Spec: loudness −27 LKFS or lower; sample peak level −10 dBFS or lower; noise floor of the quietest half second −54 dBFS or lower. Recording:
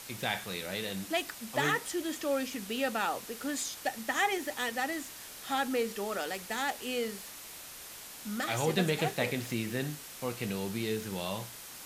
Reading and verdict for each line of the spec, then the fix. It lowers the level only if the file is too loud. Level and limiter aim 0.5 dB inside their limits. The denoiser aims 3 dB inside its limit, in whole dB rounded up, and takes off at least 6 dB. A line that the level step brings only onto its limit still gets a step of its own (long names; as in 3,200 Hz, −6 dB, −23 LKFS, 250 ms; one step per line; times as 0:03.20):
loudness −33.5 LKFS: in spec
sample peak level −15.5 dBFS: in spec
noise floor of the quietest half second −47 dBFS: out of spec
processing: broadband denoise 10 dB, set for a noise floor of −47 dBFS